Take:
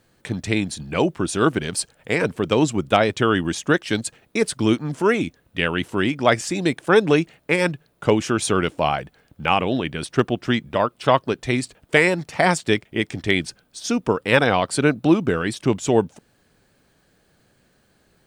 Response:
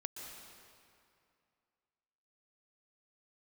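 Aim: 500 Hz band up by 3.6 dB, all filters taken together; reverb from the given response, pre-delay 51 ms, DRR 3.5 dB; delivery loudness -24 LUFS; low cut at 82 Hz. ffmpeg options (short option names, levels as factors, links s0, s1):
-filter_complex "[0:a]highpass=82,equalizer=f=500:t=o:g=4.5,asplit=2[s0][s1];[1:a]atrim=start_sample=2205,adelay=51[s2];[s1][s2]afir=irnorm=-1:irlink=0,volume=0.794[s3];[s0][s3]amix=inputs=2:normalize=0,volume=0.501"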